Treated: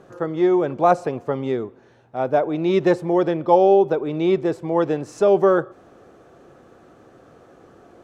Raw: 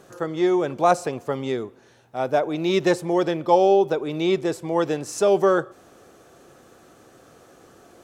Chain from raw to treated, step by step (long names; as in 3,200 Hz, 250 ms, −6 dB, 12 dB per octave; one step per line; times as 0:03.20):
low-pass filter 1,400 Hz 6 dB per octave
level +3 dB